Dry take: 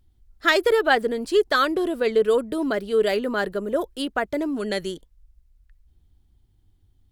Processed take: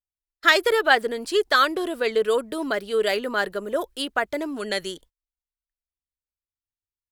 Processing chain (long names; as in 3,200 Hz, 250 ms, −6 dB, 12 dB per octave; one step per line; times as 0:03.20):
low-shelf EQ 460 Hz −11.5 dB
noise gate −53 dBFS, range −35 dB
level +3.5 dB